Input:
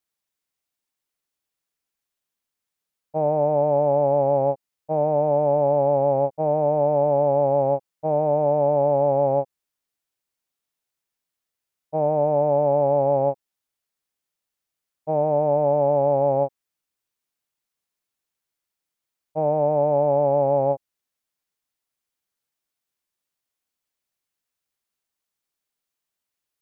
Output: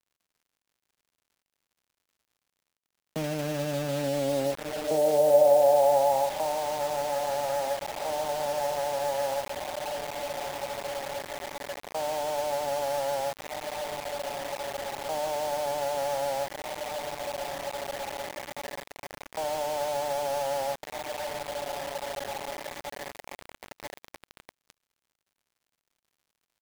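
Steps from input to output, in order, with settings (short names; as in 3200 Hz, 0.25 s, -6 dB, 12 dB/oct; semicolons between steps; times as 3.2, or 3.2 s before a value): notch 1200 Hz, Q 8.3; gate with hold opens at -19 dBFS; diffused feedback echo 1.598 s, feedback 44%, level -9 dB; in parallel at +2 dB: compressor 12:1, threshold -28 dBFS, peak gain reduction 14 dB; on the sum: HPF 87 Hz 24 dB/oct; on a send at -14 dB: reverb, pre-delay 3 ms; on the sum: soft clip -6 dBFS, distortion -25 dB; band-pass sweep 230 Hz -> 1300 Hz, 3.92–6.73; dynamic EQ 410 Hz, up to -5 dB, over -45 dBFS, Q 7; bit-crush 6-bit; crackle 120/s -59 dBFS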